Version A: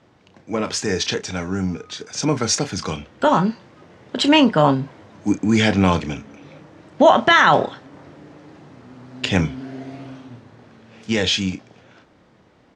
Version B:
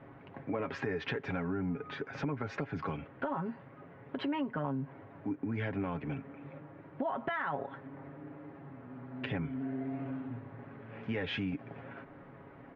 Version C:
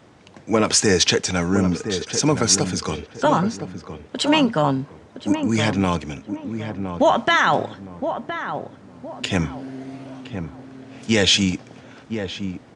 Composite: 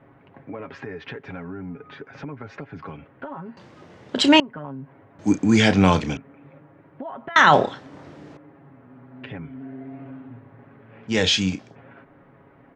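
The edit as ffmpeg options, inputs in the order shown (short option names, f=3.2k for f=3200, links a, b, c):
-filter_complex "[0:a]asplit=4[a][b][c][d];[1:a]asplit=5[e][f][g][h][i];[e]atrim=end=3.572[j];[a]atrim=start=3.568:end=4.402[k];[f]atrim=start=4.398:end=5.192[l];[b]atrim=start=5.188:end=6.172[m];[g]atrim=start=6.168:end=7.362[n];[c]atrim=start=7.358:end=8.372[o];[h]atrim=start=8.368:end=11.17[p];[d]atrim=start=11.07:end=11.77[q];[i]atrim=start=11.67[r];[j][k]acrossfade=d=0.004:c1=hsin:c2=hsin[s];[s][l]acrossfade=d=0.004:c1=hsin:c2=hsin[t];[t][m]acrossfade=d=0.004:c1=hsin:c2=hsin[u];[u][n]acrossfade=d=0.004:c1=hsin:c2=hsin[v];[v][o]acrossfade=d=0.004:c1=hsin:c2=hsin[w];[w][p]acrossfade=d=0.004:c1=hsin:c2=hsin[x];[x][q]acrossfade=d=0.1:c1=tri:c2=tri[y];[y][r]acrossfade=d=0.1:c1=tri:c2=tri"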